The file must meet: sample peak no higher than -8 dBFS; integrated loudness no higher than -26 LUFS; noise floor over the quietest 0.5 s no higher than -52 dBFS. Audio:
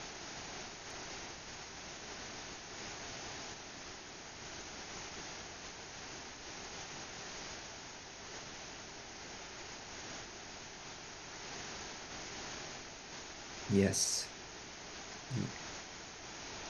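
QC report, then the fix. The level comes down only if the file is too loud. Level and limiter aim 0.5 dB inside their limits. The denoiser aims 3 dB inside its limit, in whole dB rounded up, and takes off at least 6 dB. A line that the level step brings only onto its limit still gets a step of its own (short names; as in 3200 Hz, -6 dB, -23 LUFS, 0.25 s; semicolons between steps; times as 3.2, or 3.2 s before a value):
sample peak -17.5 dBFS: OK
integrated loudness -43.0 LUFS: OK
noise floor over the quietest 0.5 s -50 dBFS: fail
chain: denoiser 6 dB, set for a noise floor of -50 dBFS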